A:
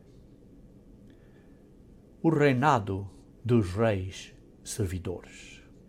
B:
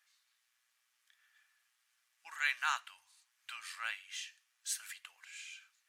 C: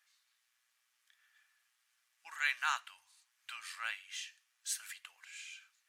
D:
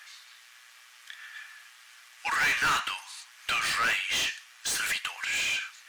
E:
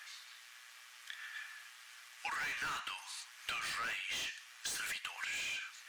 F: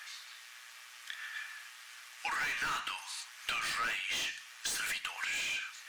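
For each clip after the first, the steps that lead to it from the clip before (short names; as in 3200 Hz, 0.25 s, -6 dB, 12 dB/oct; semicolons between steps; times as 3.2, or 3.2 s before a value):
inverse Chebyshev high-pass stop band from 430 Hz, stop band 60 dB
nothing audible
overdrive pedal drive 34 dB, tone 4000 Hz, clips at -17.5 dBFS
compressor 6:1, threshold -36 dBFS, peak gain reduction 12 dB; gain -2.5 dB
reverb RT60 0.25 s, pre-delay 3 ms, DRR 11.5 dB; gain +4 dB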